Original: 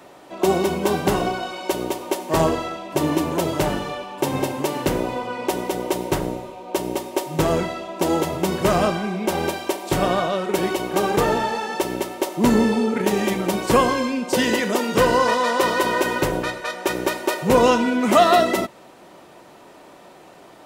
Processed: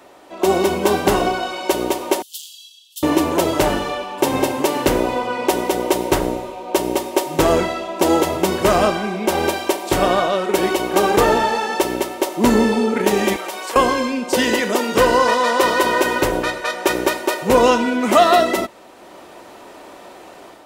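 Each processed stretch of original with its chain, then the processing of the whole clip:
2.22–3.03 bell 5100 Hz -7 dB 2.5 oct + hard clip -15.5 dBFS + steep high-pass 3000 Hz 96 dB/oct
13.36–13.76 HPF 690 Hz + compressor 4:1, threshold -28 dBFS
whole clip: bell 150 Hz -10 dB 0.66 oct; AGC gain up to 6.5 dB

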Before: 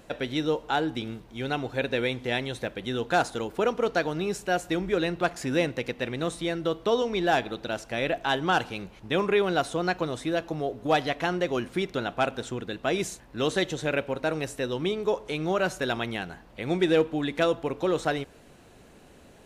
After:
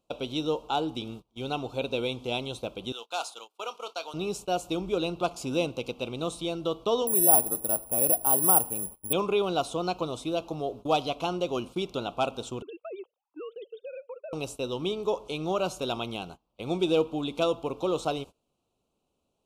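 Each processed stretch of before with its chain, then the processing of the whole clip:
2.92–4.14 Bessel high-pass 1200 Hz + doubler 26 ms -14 dB
7.07–9.13 LPF 1200 Hz + careless resampling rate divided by 4×, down filtered, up zero stuff
12.62–14.33 sine-wave speech + compressor 8:1, threshold -33 dBFS + air absorption 260 m
whole clip: gate -39 dBFS, range -23 dB; Chebyshev band-stop 1200–2700 Hz, order 2; low shelf 410 Hz -3 dB

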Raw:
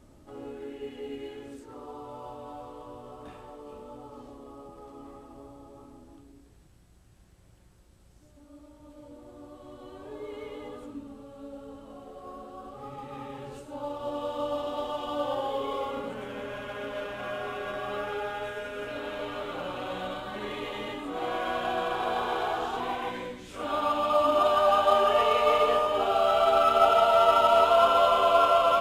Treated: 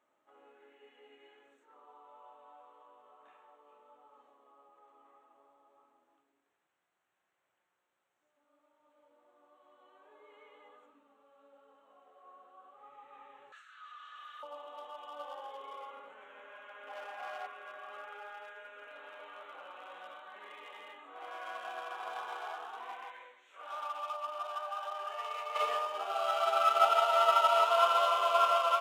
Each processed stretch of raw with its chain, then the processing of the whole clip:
13.52–14.43 rippled Chebyshev high-pass 1200 Hz, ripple 9 dB + overdrive pedal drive 29 dB, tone 2600 Hz, clips at -28.5 dBFS
16.87–17.47 bell 780 Hz +13.5 dB 0.21 oct + sample leveller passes 1
23.04–25.56 HPF 460 Hz + compressor, threshold -25 dBFS
whole clip: Wiener smoothing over 9 samples; HPF 930 Hz 12 dB/oct; upward expander 1.5:1, over -36 dBFS

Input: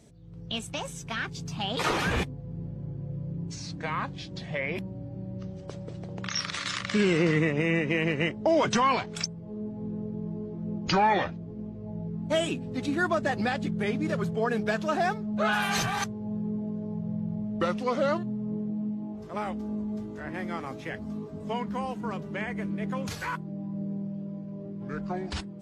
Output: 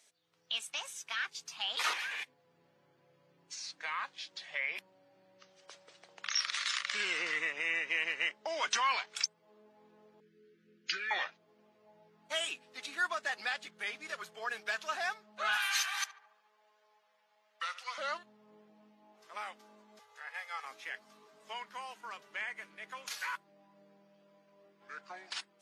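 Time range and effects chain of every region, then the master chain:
1.93–2.34 bell 2100 Hz +7 dB 1.3 oct + compressor 5:1, threshold -31 dBFS + notch 1300 Hz, Q 6.1
10.2–11.11 elliptic band-stop 440–1500 Hz, stop band 60 dB + high shelf 6300 Hz -9.5 dB
15.57–17.98 HPF 1100 Hz + darkening echo 73 ms, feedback 68%, low-pass 1600 Hz, level -13 dB
19.99–20.65 Chebyshev band-stop 110–470 Hz, order 4 + comb 2.4 ms, depth 64%
whole clip: HPF 1400 Hz 12 dB/oct; notch 7700 Hz, Q 18; gain -1 dB

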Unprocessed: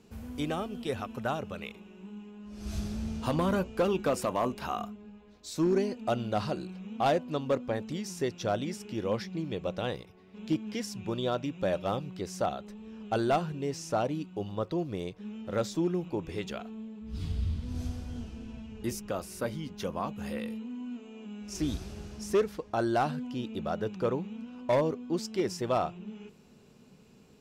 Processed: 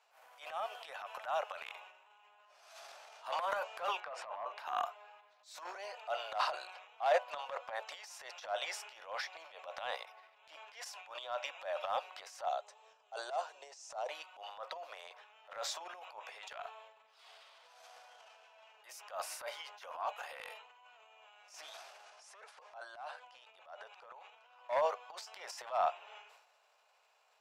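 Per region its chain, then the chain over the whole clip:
4–4.59 Bessel low-pass 2700 Hz + compressor 12:1, threshold -32 dBFS
12.45–14.09 synth low-pass 7100 Hz, resonance Q 1.9 + bell 1900 Hz -12 dB 2.9 oct
22.04–24.55 notch 1900 Hz, Q 29 + careless resampling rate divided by 2×, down none, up filtered + compressor 10:1, threshold -39 dBFS
whole clip: steep high-pass 630 Hz 48 dB/oct; high shelf 3300 Hz -12 dB; transient shaper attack -11 dB, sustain +11 dB

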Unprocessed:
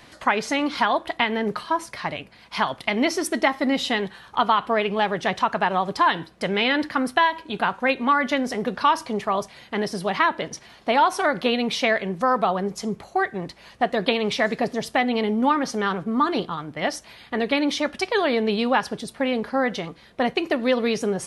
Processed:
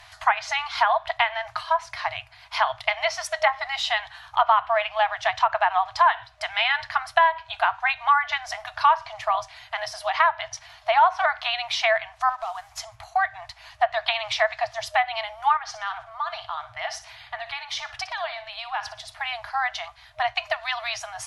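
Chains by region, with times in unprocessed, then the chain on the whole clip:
12.29–12.8 CVSD 64 kbps + compressor, threshold -27 dBFS
15.57–19.14 high shelf 9800 Hz -10 dB + compressor 3:1, threshold -26 dBFS + feedback echo 60 ms, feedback 34%, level -13 dB
whole clip: FFT band-reject 120–620 Hz; treble ducked by the level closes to 2000 Hz, closed at -16.5 dBFS; bell 8700 Hz -5.5 dB 0.24 oct; gain +1.5 dB

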